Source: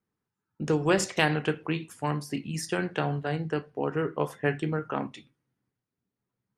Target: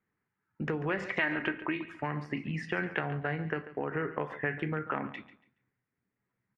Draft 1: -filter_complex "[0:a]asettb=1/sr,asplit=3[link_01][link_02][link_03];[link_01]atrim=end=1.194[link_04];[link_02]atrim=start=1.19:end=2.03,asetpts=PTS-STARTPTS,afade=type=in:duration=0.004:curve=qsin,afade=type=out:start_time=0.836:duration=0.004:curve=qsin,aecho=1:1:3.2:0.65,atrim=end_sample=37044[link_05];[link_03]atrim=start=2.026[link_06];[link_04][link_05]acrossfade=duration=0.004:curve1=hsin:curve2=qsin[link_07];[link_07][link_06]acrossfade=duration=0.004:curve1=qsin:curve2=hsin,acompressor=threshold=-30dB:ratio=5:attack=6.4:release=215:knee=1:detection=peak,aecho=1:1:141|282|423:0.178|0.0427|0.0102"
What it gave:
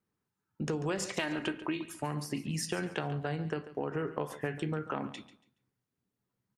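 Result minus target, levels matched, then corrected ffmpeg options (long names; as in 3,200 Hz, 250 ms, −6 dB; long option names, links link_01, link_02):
2,000 Hz band −5.5 dB
-filter_complex "[0:a]asettb=1/sr,asplit=3[link_01][link_02][link_03];[link_01]atrim=end=1.194[link_04];[link_02]atrim=start=1.19:end=2.03,asetpts=PTS-STARTPTS,afade=type=in:duration=0.004:curve=qsin,afade=type=out:start_time=0.836:duration=0.004:curve=qsin,aecho=1:1:3.2:0.65,atrim=end_sample=37044[link_05];[link_03]atrim=start=2.026[link_06];[link_04][link_05]acrossfade=duration=0.004:curve1=hsin:curve2=qsin[link_07];[link_07][link_06]acrossfade=duration=0.004:curve1=qsin:curve2=hsin,acompressor=threshold=-30dB:ratio=5:attack=6.4:release=215:knee=1:detection=peak,lowpass=frequency=2000:width_type=q:width=3.1,aecho=1:1:141|282|423:0.178|0.0427|0.0102"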